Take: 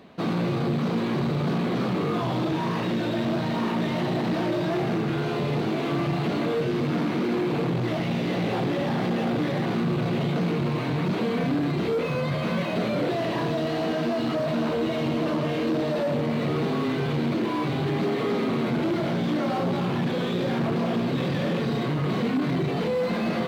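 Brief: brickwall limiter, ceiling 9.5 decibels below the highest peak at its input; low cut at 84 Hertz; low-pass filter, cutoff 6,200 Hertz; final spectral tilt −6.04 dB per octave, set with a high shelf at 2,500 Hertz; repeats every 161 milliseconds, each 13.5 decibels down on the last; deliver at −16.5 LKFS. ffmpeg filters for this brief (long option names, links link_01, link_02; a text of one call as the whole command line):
ffmpeg -i in.wav -af "highpass=84,lowpass=6200,highshelf=frequency=2500:gain=-8,alimiter=limit=-24dB:level=0:latency=1,aecho=1:1:161|322:0.211|0.0444,volume=15dB" out.wav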